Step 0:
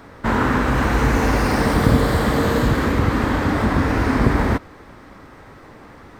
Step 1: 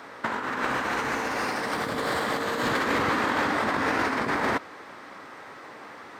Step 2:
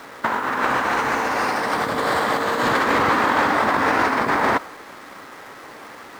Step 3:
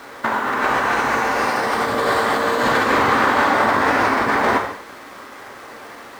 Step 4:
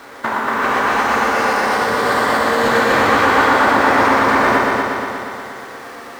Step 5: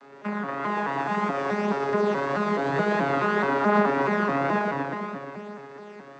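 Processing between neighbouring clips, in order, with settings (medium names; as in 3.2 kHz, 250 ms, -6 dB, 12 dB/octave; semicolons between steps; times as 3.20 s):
frequency weighting A; compressor with a negative ratio -25 dBFS, ratio -0.5; trim -1 dB
dynamic bell 910 Hz, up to +5 dB, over -37 dBFS, Q 0.9; in parallel at -5 dB: bit crusher 7-bit
gated-style reverb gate 260 ms falling, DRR 2 dB
multi-head delay 119 ms, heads first and second, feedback 65%, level -6 dB
vocoder on a broken chord bare fifth, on C#3, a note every 214 ms; flange 0.53 Hz, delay 4.8 ms, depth 1.4 ms, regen +36%; trim -5 dB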